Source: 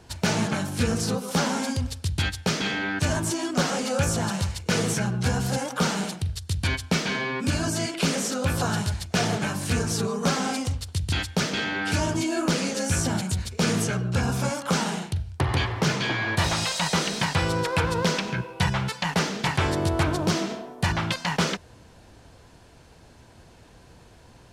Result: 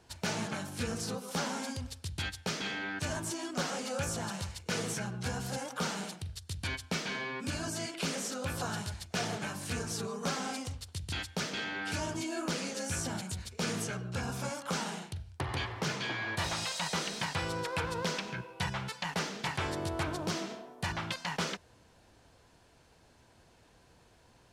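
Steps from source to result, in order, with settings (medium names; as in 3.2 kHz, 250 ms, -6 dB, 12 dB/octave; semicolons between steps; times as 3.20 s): bass shelf 310 Hz -5 dB; trim -8.5 dB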